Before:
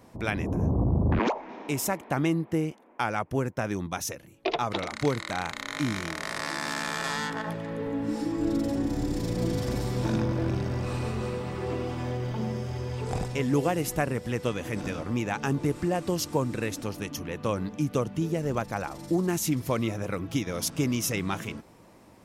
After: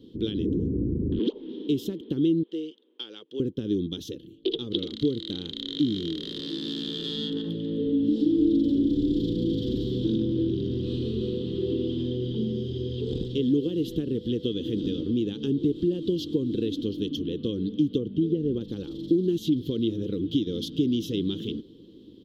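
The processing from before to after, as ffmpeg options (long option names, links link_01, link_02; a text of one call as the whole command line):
ffmpeg -i in.wav -filter_complex "[0:a]asettb=1/sr,asplit=3[link_01][link_02][link_03];[link_01]atrim=end=2.434[link_04];[link_02]atrim=start=2.43:end=3.4,asetpts=PTS-STARTPTS,afade=type=in:duration=0.004:curve=qsin,afade=type=out:start_time=0.966:duration=0.004:curve=qsin,highpass=720,lowpass=7500[link_05];[link_03]atrim=start=3.396[link_06];[link_04][link_05]acrossfade=duration=0.004:curve1=hsin:curve2=qsin[link_07];[link_07][link_06]acrossfade=duration=0.004:curve1=qsin:curve2=hsin,asettb=1/sr,asplit=3[link_08][link_09][link_10];[link_08]atrim=end=17.984[link_11];[link_09]atrim=start=17.98:end=18.61,asetpts=PTS-STARTPTS,afade=type=in:duration=0.004:curve=qsin,afade=type=out:start_time=0.626:duration=0.004:curve=qsin,lowpass=frequency=1800:poles=1[link_12];[link_10]atrim=start=18.606[link_13];[link_11][link_12]acrossfade=duration=0.004:curve1=hsin:curve2=qsin[link_14];[link_14][link_13]acrossfade=duration=0.004:curve1=qsin:curve2=hsin,acompressor=threshold=-27dB:ratio=6,firequalizer=gain_entry='entry(120,0);entry(310,11);entry(460,5);entry(660,-28);entry(1600,-20);entry(2300,-22);entry(3200,13);entry(5400,-11);entry(8700,-22);entry(14000,-12)':delay=0.05:min_phase=1" out.wav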